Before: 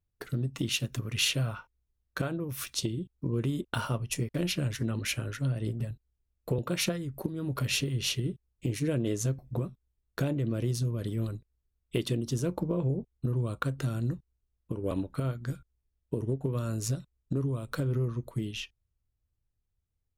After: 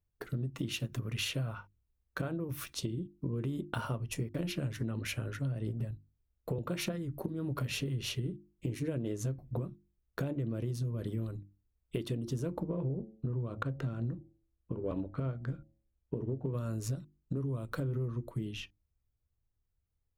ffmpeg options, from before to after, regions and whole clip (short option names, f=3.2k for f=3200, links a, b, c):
-filter_complex "[0:a]asettb=1/sr,asplit=3[a][b][c];[a]atrim=end=12.694[d];[b]atrim=start=12.69:end=16.54,asetpts=PTS-STARTPTS,afade=t=in:d=0.004:c=qsin,afade=t=out:st=3.846:d=0.004:c=qsin,bandreject=f=109.6:t=h:w=4,bandreject=f=219.2:t=h:w=4,bandreject=f=328.8:t=h:w=4,bandreject=f=438.4:t=h:w=4,bandreject=f=548:t=h:w=4,bandreject=f=657.6:t=h:w=4,bandreject=f=767.2:t=h:w=4,adynamicsmooth=sensitivity=7:basefreq=3.2k[e];[c]atrim=start=16.536[f];[d][e]acrossfade=d=0.004:c1=hsin:c2=qsin[g];[g][f]acrossfade=d=0.004:c1=qsin:c2=hsin,equalizer=f=6.8k:t=o:w=3:g=-8,bandreject=f=50:t=h:w=6,bandreject=f=100:t=h:w=6,bandreject=f=150:t=h:w=6,bandreject=f=200:t=h:w=6,bandreject=f=250:t=h:w=6,bandreject=f=300:t=h:w=6,bandreject=f=350:t=h:w=6,acompressor=threshold=-31dB:ratio=6"